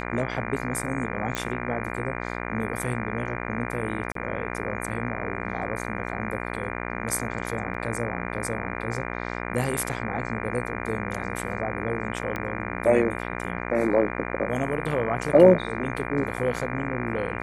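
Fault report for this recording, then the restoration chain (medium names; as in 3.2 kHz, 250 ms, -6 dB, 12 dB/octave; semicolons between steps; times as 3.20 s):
buzz 60 Hz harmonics 40 -32 dBFS
1.35 s: pop -13 dBFS
4.12–4.15 s: dropout 33 ms
7.74 s: dropout 4.2 ms
12.36 s: pop -16 dBFS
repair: de-click; de-hum 60 Hz, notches 40; interpolate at 4.12 s, 33 ms; interpolate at 7.74 s, 4.2 ms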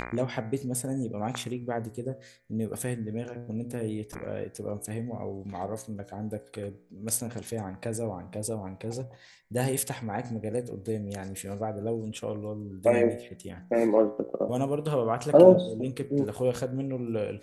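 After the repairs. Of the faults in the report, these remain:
nothing left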